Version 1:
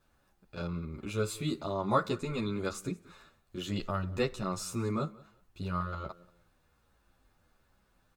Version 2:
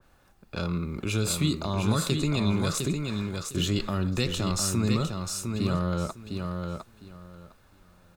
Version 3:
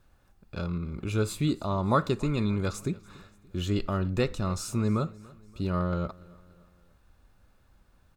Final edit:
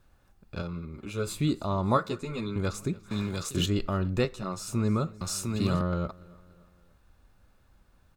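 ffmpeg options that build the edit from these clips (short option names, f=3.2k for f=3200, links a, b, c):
-filter_complex "[0:a]asplit=3[a][b][c];[1:a]asplit=2[d][e];[2:a]asplit=6[f][g][h][i][j][k];[f]atrim=end=0.622[l];[a]atrim=start=0.618:end=1.272[m];[g]atrim=start=1.268:end=1.972[n];[b]atrim=start=1.968:end=2.562[o];[h]atrim=start=2.558:end=3.112[p];[d]atrim=start=3.108:end=3.662[q];[i]atrim=start=3.658:end=4.252[r];[c]atrim=start=4.248:end=4.672[s];[j]atrim=start=4.668:end=5.212[t];[e]atrim=start=5.208:end=5.812[u];[k]atrim=start=5.808[v];[l][m]acrossfade=d=0.004:c1=hsin:c2=hsin[w];[w][n]acrossfade=d=0.004:c1=hsin:c2=hsin[x];[x][o]acrossfade=d=0.004:c1=hsin:c2=hsin[y];[y][p]acrossfade=d=0.004:c1=hsin:c2=hsin[z];[z][q]acrossfade=d=0.004:c1=hsin:c2=hsin[aa];[aa][r]acrossfade=d=0.004:c1=hsin:c2=hsin[ab];[ab][s]acrossfade=d=0.004:c1=hsin:c2=hsin[ac];[ac][t]acrossfade=d=0.004:c1=hsin:c2=hsin[ad];[ad][u]acrossfade=d=0.004:c1=hsin:c2=hsin[ae];[ae][v]acrossfade=d=0.004:c1=hsin:c2=hsin"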